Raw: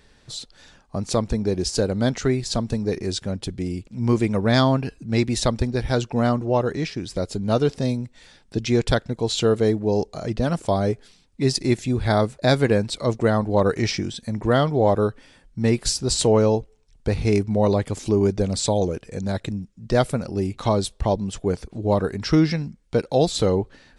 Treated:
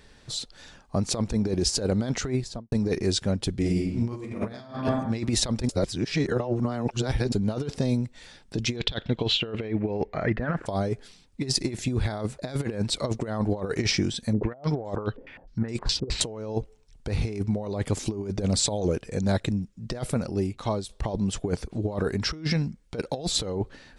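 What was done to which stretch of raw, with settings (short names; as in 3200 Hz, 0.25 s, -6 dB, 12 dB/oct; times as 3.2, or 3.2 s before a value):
2.23–2.72 studio fade out
3.58–4.67 reverb throw, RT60 0.97 s, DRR -2.5 dB
5.69–7.32 reverse
8.76–10.65 synth low-pass 3800 Hz -> 1600 Hz
14.33–16.21 stepped low-pass 9.6 Hz 470–7300 Hz
19.98–20.89 fade out linear, to -13.5 dB
whole clip: negative-ratio compressor -23 dBFS, ratio -0.5; gain -2.5 dB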